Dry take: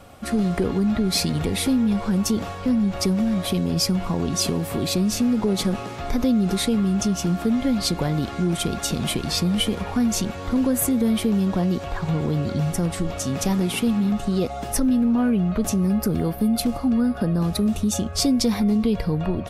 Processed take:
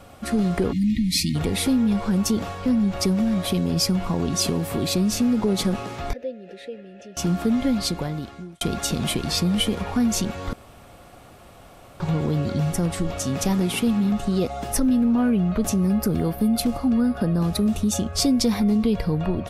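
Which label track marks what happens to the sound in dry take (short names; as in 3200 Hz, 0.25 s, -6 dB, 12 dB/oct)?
0.720000	1.350000	spectral delete 340–1800 Hz
6.130000	7.170000	vowel filter e
7.680000	8.610000	fade out
10.530000	12.000000	room tone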